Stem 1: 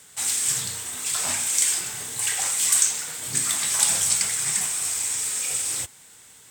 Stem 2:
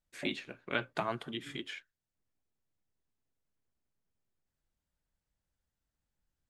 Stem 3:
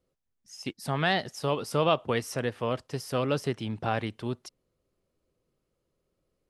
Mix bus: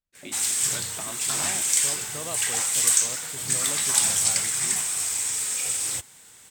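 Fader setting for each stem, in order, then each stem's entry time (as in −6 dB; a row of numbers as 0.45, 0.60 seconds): −0.5, −6.0, −13.0 decibels; 0.15, 0.00, 0.40 seconds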